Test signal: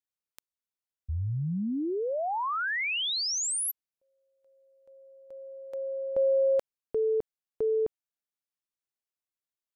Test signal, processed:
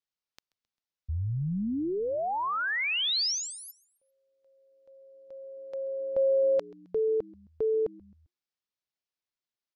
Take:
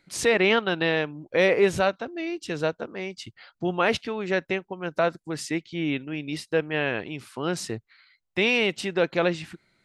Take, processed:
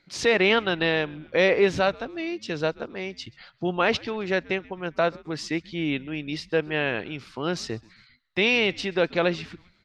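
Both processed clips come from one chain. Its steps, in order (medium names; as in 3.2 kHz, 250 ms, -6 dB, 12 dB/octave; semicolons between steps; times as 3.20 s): resonant high shelf 7.1 kHz -12 dB, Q 1.5; frequency-shifting echo 132 ms, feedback 51%, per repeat -120 Hz, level -24 dB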